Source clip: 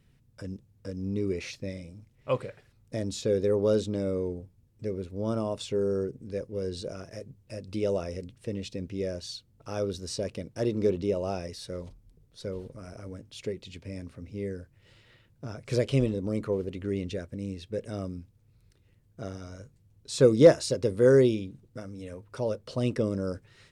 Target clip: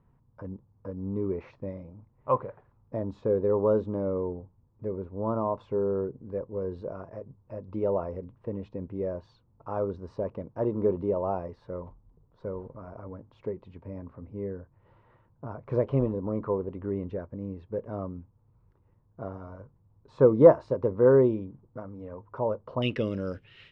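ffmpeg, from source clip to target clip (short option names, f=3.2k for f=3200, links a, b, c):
-af "asetnsamples=n=441:p=0,asendcmd='22.82 lowpass f 2900',lowpass=f=1k:t=q:w=4.4,volume=-1.5dB"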